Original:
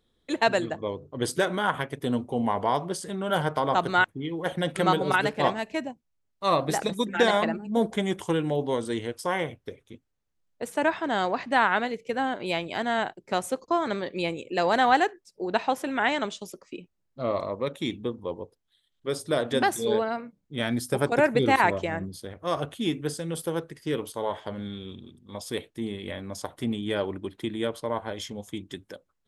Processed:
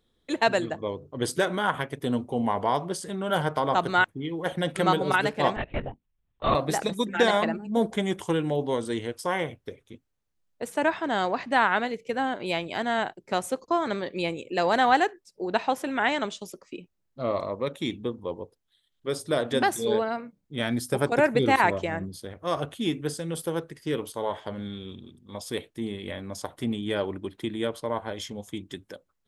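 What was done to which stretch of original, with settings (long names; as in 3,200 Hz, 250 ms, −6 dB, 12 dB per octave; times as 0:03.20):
0:05.56–0:06.55: linear-prediction vocoder at 8 kHz whisper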